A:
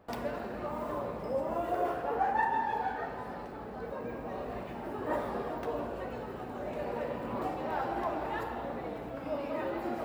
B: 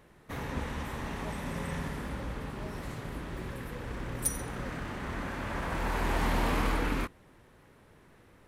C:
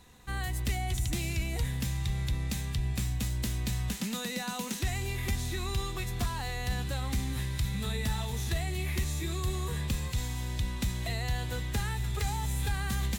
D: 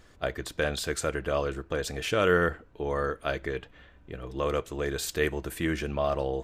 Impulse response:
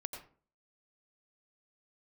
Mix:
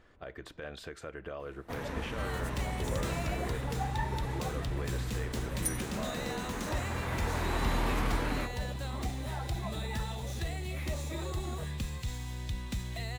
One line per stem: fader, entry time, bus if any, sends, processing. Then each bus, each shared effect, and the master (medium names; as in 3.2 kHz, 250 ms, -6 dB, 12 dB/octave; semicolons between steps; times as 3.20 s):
-7.0 dB, 1.60 s, no send, reverb removal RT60 1.7 s
-3.0 dB, 1.40 s, no send, none
-4.5 dB, 1.90 s, no send, median filter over 3 samples
-3.5 dB, 0.00 s, no send, compression 10:1, threshold -32 dBFS, peak gain reduction 14.5 dB; peak limiter -26.5 dBFS, peak gain reduction 8.5 dB; tone controls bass -3 dB, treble -13 dB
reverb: none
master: none